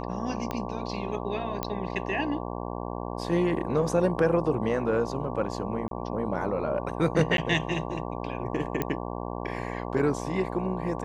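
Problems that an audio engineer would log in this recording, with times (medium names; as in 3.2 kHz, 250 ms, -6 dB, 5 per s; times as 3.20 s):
buzz 60 Hz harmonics 19 -34 dBFS
0.51 s: pop -17 dBFS
1.63 s: pop -13 dBFS
5.88–5.91 s: dropout 32 ms
7.37–7.38 s: dropout 12 ms
8.82 s: pop -13 dBFS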